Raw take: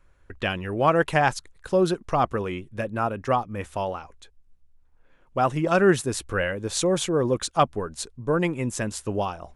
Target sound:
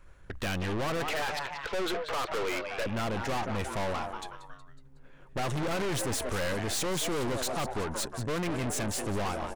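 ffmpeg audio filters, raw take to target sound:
-filter_complex "[0:a]alimiter=limit=-15.5dB:level=0:latency=1:release=20,asettb=1/sr,asplit=3[a][b][c];[a]atrim=end=1.084[d];[b]atrim=start=1.08:end=2.86,asetpts=PTS-STARTPTS,afade=t=in:d=0.004:c=qsin,afade=t=out:st=1.776:d=0.004:c=qsin,highpass=f=380:w=0.5412,highpass=f=380:w=1.3066,equalizer=f=450:t=q:w=4:g=5,equalizer=f=760:t=q:w=4:g=-5,equalizer=f=1.3k:t=q:w=4:g=5,equalizer=f=2.2k:t=q:w=4:g=9,equalizer=f=3.3k:t=q:w=4:g=4,lowpass=f=4.1k:w=0.5412,lowpass=f=4.1k:w=1.3066[e];[c]atrim=start=2.856[f];[d][e]acrossfade=d=0.004:c1=hsin:c2=qsin[g];[g][f]acrossfade=d=0.004:c1=qsin:c2=hsin,asettb=1/sr,asplit=3[h][i][j];[h]atrim=end=8.634[k];[i]atrim=start=8.63:end=9.25,asetpts=PTS-STARTPTS,afade=t=in:d=0.004:c=qsin,afade=t=out:st=0.616:d=0.004:c=qsin,acrossover=split=490[l][m];[m]acompressor=threshold=-30dB:ratio=2.5[n];[l][n]amix=inputs=2:normalize=0[o];[j]atrim=start=9.246[p];[k][o]acrossfade=d=0.004:c1=hsin:c2=qsin[q];[q][p]acrossfade=d=0.004:c1=qsin:c2=hsin,asplit=5[r][s][t][u][v];[s]adelay=184,afreqshift=130,volume=-14dB[w];[t]adelay=368,afreqshift=260,volume=-20.6dB[x];[u]adelay=552,afreqshift=390,volume=-27.1dB[y];[v]adelay=736,afreqshift=520,volume=-33.7dB[z];[r][w][x][y][z]amix=inputs=5:normalize=0,aeval=exprs='(tanh(79.4*val(0)+0.6)-tanh(0.6))/79.4':c=same,volume=8dB"

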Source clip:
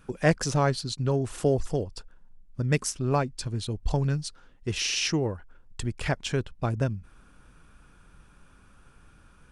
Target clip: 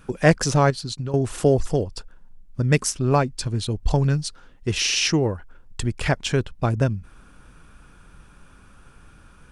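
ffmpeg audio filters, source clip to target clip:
-filter_complex "[0:a]asettb=1/sr,asplit=3[a][b][c];[a]atrim=end=0.704[d];[b]atrim=start=0.7:end=1.14,asetpts=PTS-STARTPTS,afade=t=in:d=0.004:c=qsin,afade=t=out:st=0.436:d=0.004:c=qsin,acompressor=threshold=-32dB:ratio=12[e];[c]atrim=start=1.136[f];[d][e]acrossfade=d=0.004:c1=hsin:c2=qsin[g];[g][f]acrossfade=d=0.004:c1=qsin:c2=hsin,volume=6dB"

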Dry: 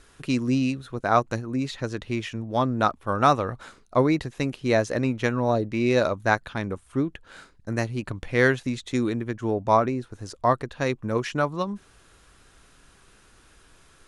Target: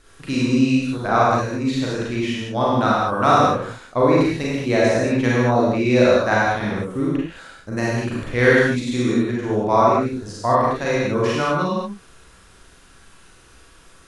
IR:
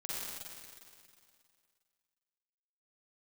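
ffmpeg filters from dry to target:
-filter_complex "[1:a]atrim=start_sample=2205,afade=t=out:st=0.33:d=0.01,atrim=end_sample=14994,asetrate=52920,aresample=44100[a];[0:a][a]afir=irnorm=-1:irlink=0,volume=6.5dB"

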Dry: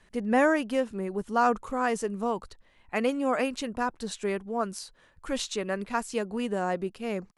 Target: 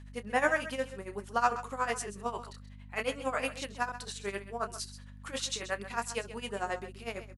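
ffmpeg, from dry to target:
-filter_complex "[0:a]highpass=f=1.2k:p=1,asplit=2[a][b];[b]adelay=30,volume=-7dB[c];[a][c]amix=inputs=2:normalize=0,tremolo=f=11:d=0.83,aeval=exprs='val(0)+0.00316*(sin(2*PI*50*n/s)+sin(2*PI*2*50*n/s)/2+sin(2*PI*3*50*n/s)/3+sin(2*PI*4*50*n/s)/4+sin(2*PI*5*50*n/s)/5)':c=same,asplit=2[d][e];[e]aecho=0:1:131:0.211[f];[d][f]amix=inputs=2:normalize=0,volume=3dB"

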